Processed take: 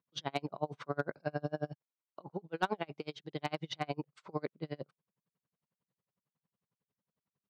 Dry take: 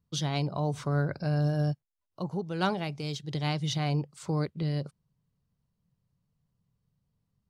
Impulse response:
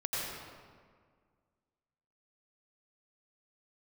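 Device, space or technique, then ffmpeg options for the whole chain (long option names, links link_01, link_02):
helicopter radio: -af "highpass=300,lowpass=2700,aeval=exprs='val(0)*pow(10,-35*(0.5-0.5*cos(2*PI*11*n/s))/20)':channel_layout=same,asoftclip=type=hard:threshold=-23dB,volume=3.5dB"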